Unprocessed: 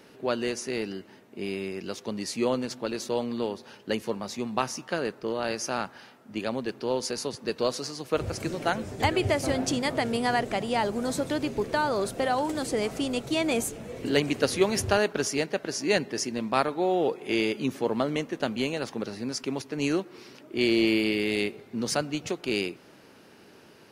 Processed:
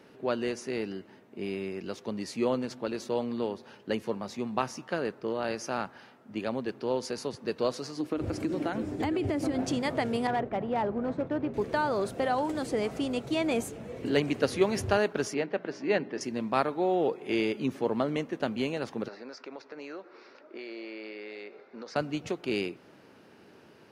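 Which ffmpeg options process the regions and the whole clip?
-filter_complex "[0:a]asettb=1/sr,asplit=3[s0][s1][s2];[s0]atrim=end=7.974[s3];[s1]atrim=start=7.97:end=9.59,asetpts=PTS-STARTPTS,afade=t=in:d=0.004:c=qsin,afade=t=out:st=1.616:d=0.004:c=qsin,equalizer=f=300:w=4.1:g=14.5,bandreject=f=6200:w=24,acompressor=threshold=0.0708:ratio=10:attack=3.2:release=140:knee=1:detection=peak[s4];[s2]atrim=start=9.586[s5];[s3][s4]acrossfade=d=0.004:c1=hsin:c2=qsin[s6];[s6][s5]acrossfade=d=0.004:c1=qsin:c2=hsin,asettb=1/sr,asplit=3[s7][s8][s9];[s7]atrim=end=10.274[s10];[s8]atrim=start=10.27:end=11.54,asetpts=PTS-STARTPTS,afade=t=in:d=0.004:c=qsin,afade=t=out:st=1.266:d=0.004:c=qsin,lowpass=1700,agate=range=0.0224:threshold=0.02:ratio=3:release=100:detection=peak,volume=11.9,asoftclip=hard,volume=0.0841[s11];[s9]atrim=start=11.536[s12];[s10][s11]acrossfade=d=0.004:c1=hsin:c2=qsin[s13];[s13][s12]acrossfade=d=0.004:c1=qsin:c2=hsin,asettb=1/sr,asplit=3[s14][s15][s16];[s14]atrim=end=15.344[s17];[s15]atrim=start=15.34:end=16.21,asetpts=PTS-STARTPTS,afade=t=in:d=0.004:c=qsin,afade=t=out:st=0.866:d=0.004:c=qsin,highpass=160,lowpass=3100,bandreject=f=60:t=h:w=6,bandreject=f=120:t=h:w=6,bandreject=f=180:t=h:w=6,bandreject=f=240:t=h:w=6,bandreject=f=300:t=h:w=6,bandreject=f=360:t=h:w=6[s18];[s16]atrim=start=16.206[s19];[s17][s18]acrossfade=d=0.004:c1=hsin:c2=qsin[s20];[s20][s19]acrossfade=d=0.004:c1=qsin:c2=hsin,asettb=1/sr,asplit=3[s21][s22][s23];[s21]atrim=end=19.084[s24];[s22]atrim=start=19.08:end=21.96,asetpts=PTS-STARTPTS,afade=t=in:d=0.004:c=qsin,afade=t=out:st=2.876:d=0.004:c=qsin,highpass=470,equalizer=f=540:t=q:w=4:g=5,equalizer=f=1400:t=q:w=4:g=5,equalizer=f=3100:t=q:w=4:g=-9,lowpass=f=5200:w=0.5412,lowpass=f=5200:w=1.3066,acompressor=threshold=0.0158:ratio=5:attack=3.2:release=140:knee=1:detection=peak[s25];[s23]atrim=start=21.956[s26];[s24][s25]acrossfade=d=0.004:c1=hsin:c2=qsin[s27];[s27][s26]acrossfade=d=0.004:c1=qsin:c2=hsin,highpass=48,highshelf=f=3700:g=-9,volume=0.841"

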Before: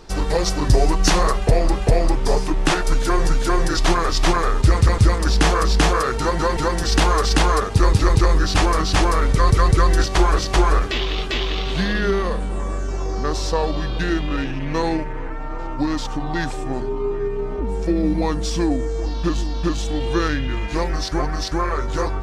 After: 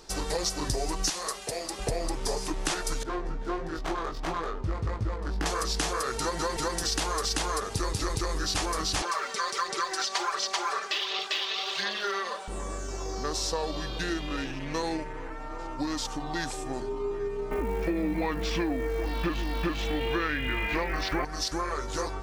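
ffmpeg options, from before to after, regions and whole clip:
-filter_complex "[0:a]asettb=1/sr,asplit=3[s0][s1][s2];[s0]atrim=end=1.104[s3];[s1]atrim=start=1.1:end=1.79,asetpts=PTS-STARTPTS,afade=t=in:d=0.004:c=qsin,afade=t=out:st=0.686:d=0.004:c=qsin,highpass=f=630:p=1,equalizer=f=990:w=0.45:g=-5[s4];[s2]atrim=start=1.786[s5];[s3][s4]acrossfade=d=0.004:c1=hsin:c2=qsin[s6];[s6][s5]acrossfade=d=0.004:c1=qsin:c2=hsin,asettb=1/sr,asplit=3[s7][s8][s9];[s7]atrim=end=3.034[s10];[s8]atrim=start=3.03:end=5.46,asetpts=PTS-STARTPTS,afade=t=in:d=0.004:c=qsin,afade=t=out:st=2.426:d=0.004:c=qsin,highshelf=f=8100:g=8,adynamicsmooth=sensitivity=0.5:basefreq=850,flanger=delay=18.5:depth=2.5:speed=1.5[s11];[s9]atrim=start=5.456[s12];[s10][s11]acrossfade=d=0.004:c1=hsin:c2=qsin[s13];[s13][s12]acrossfade=d=0.004:c1=qsin:c2=hsin,asettb=1/sr,asplit=3[s14][s15][s16];[s14]atrim=end=9.024[s17];[s15]atrim=start=9.02:end=12.48,asetpts=PTS-STARTPTS,afade=t=in:d=0.004:c=qsin,afade=t=out:st=3.456:d=0.004:c=qsin,highpass=680,lowpass=5700,aecho=1:1:5.1:0.76,atrim=end_sample=152586,aphaser=in_gain=1:out_gain=1:delay=4.6:decay=0.4:speed=1.4:type=sinusoidal[s18];[s16]atrim=start=12.476[s19];[s17][s18]acrossfade=d=0.004:c1=hsin:c2=qsin[s20];[s20][s19]acrossfade=d=0.004:c1=qsin:c2=hsin,asettb=1/sr,asplit=3[s21][s22][s23];[s21]atrim=end=17.514[s24];[s22]atrim=start=17.51:end=21.25,asetpts=PTS-STARTPTS,afade=t=in:d=0.004:c=qsin,afade=t=out:st=3.736:d=0.004:c=qsin,acontrast=77,lowpass=f=2300:t=q:w=2.6,acrusher=bits=9:dc=4:mix=0:aa=0.000001[s25];[s23]atrim=start=21.246[s26];[s24][s25]acrossfade=d=0.004:c1=hsin:c2=qsin[s27];[s27][s26]acrossfade=d=0.004:c1=qsin:c2=hsin,bass=f=250:g=-6,treble=f=4000:g=9,acompressor=threshold=0.112:ratio=6,volume=0.473"

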